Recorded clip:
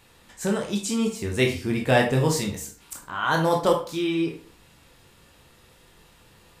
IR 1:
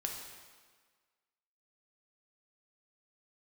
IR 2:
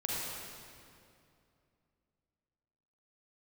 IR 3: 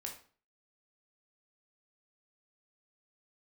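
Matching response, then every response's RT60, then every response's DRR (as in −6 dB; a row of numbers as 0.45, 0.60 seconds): 3; 1.6, 2.5, 0.40 seconds; 0.5, −5.5, 0.5 decibels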